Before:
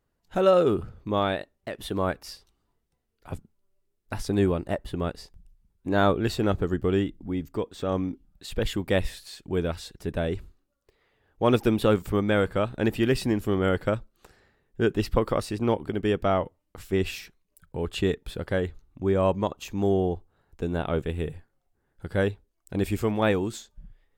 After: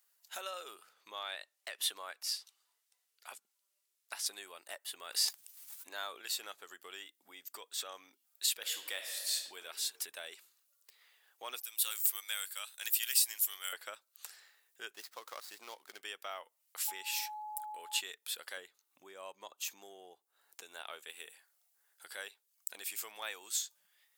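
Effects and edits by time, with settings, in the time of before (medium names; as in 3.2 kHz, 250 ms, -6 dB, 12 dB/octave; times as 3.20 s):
0.93–4.26 s: treble shelf 11 kHz -12 dB
4.90–6.22 s: decay stretcher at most 26 dB/s
8.57–9.59 s: reverb throw, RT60 0.98 s, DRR 6 dB
11.60–13.73 s: differentiator
14.93–16.01 s: median filter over 15 samples
16.87–17.99 s: whistle 850 Hz -32 dBFS
18.57–20.63 s: bass shelf 490 Hz +11 dB
whole clip: compression 3:1, threshold -37 dBFS; high-pass 650 Hz 12 dB/octave; differentiator; trim +13.5 dB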